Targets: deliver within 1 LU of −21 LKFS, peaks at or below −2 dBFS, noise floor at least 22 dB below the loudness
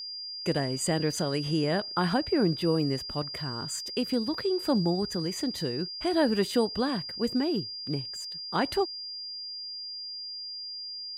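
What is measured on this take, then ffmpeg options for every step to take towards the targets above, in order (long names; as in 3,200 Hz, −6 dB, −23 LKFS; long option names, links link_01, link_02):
interfering tone 4,800 Hz; level of the tone −36 dBFS; integrated loudness −29.5 LKFS; sample peak −12.0 dBFS; target loudness −21.0 LKFS
→ -af "bandreject=frequency=4800:width=30"
-af "volume=8.5dB"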